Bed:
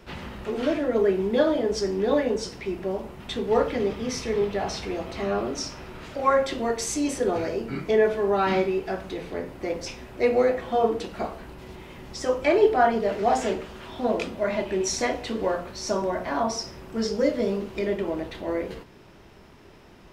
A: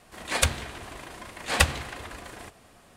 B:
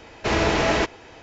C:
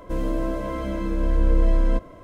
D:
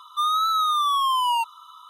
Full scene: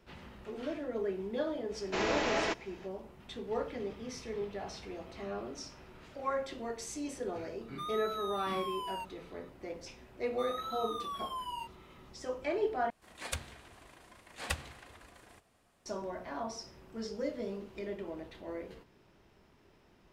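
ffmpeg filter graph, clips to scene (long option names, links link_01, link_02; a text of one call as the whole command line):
ffmpeg -i bed.wav -i cue0.wav -i cue1.wav -i cue2.wav -i cue3.wav -filter_complex "[4:a]asplit=2[link_01][link_02];[0:a]volume=-13.5dB[link_03];[2:a]equalizer=frequency=78:width_type=o:width=2.3:gain=-11.5[link_04];[link_02]flanger=delay=22.5:depth=5:speed=1.2[link_05];[link_03]asplit=2[link_06][link_07];[link_06]atrim=end=12.904[link_08];[1:a]atrim=end=2.96,asetpts=PTS-STARTPTS,volume=-15dB[link_09];[link_07]atrim=start=15.856[link_10];[link_04]atrim=end=1.22,asetpts=PTS-STARTPTS,volume=-10dB,afade=type=in:duration=0.05,afade=type=out:start_time=1.17:duration=0.05,adelay=1680[link_11];[link_01]atrim=end=1.89,asetpts=PTS-STARTPTS,volume=-18dB,afade=type=in:duration=0.004:curve=hsin,afade=type=out:start_time=1.886:duration=0.004:curve=hsin,adelay=7610[link_12];[link_05]atrim=end=1.89,asetpts=PTS-STARTPTS,volume=-15.5dB,afade=type=in:duration=0.004:curve=hsin,afade=type=out:start_time=1.886:duration=0.004:curve=hsin,adelay=10210[link_13];[link_08][link_09]acrossfade=duration=0.004:curve1=hsin:curve2=hsin[link_14];[link_14][link_10]acrossfade=duration=0.004:curve1=hsin:curve2=hsin[link_15];[link_15][link_11][link_12][link_13]amix=inputs=4:normalize=0" out.wav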